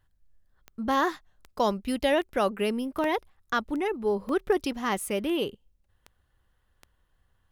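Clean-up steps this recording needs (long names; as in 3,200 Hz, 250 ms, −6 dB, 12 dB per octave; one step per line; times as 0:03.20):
click removal
repair the gap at 0:00.70/0:01.71/0:02.03/0:03.04/0:04.29, 1.6 ms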